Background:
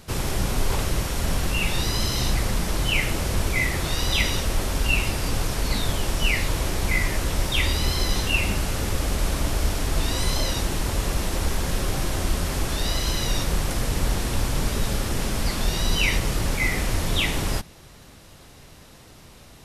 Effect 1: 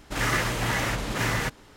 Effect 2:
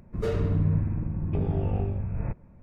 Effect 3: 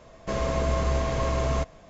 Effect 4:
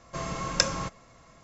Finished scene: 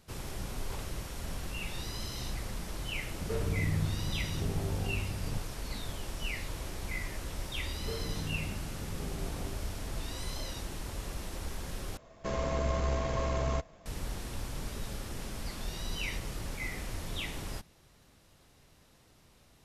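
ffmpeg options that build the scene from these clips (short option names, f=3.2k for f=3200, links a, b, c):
-filter_complex "[2:a]asplit=2[a][b];[0:a]volume=-14.5dB[c];[b]highpass=130[d];[3:a]aeval=exprs='if(lt(val(0),0),0.708*val(0),val(0))':c=same[e];[c]asplit=2[f][g];[f]atrim=end=11.974[h];[e]atrim=end=1.89,asetpts=PTS-STARTPTS,volume=-4.5dB[i];[g]atrim=start=13.856[j];[a]atrim=end=2.62,asetpts=PTS-STARTPTS,volume=-7.5dB,afade=t=in:d=0.004:c=hsin,afade=t=out:st=2.616:d=0.004:c=hsin,adelay=3070[k];[d]atrim=end=2.62,asetpts=PTS-STARTPTS,volume=-11.5dB,afade=t=in:d=0.004:c=hsin,afade=t=out:st=2.616:d=0.004:c=hsin,adelay=7650[l];[h][i]acrossfade=d=0.004:c1=hsin:c2=hsin[m];[m][j]acrossfade=d=0.004:c1=hsin:c2=hsin[n];[n][k][l]amix=inputs=3:normalize=0"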